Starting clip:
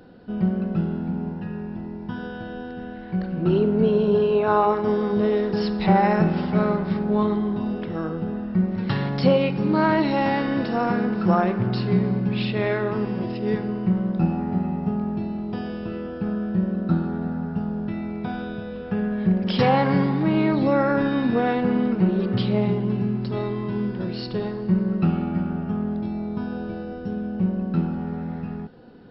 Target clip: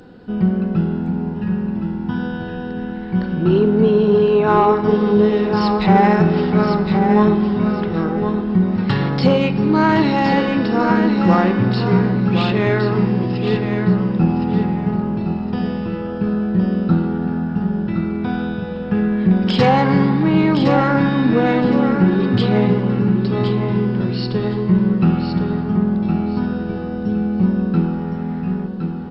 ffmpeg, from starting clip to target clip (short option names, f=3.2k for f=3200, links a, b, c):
-af "acontrast=51,superequalizer=8b=0.631:15b=3.98,aecho=1:1:1064|2128|3192:0.473|0.118|0.0296"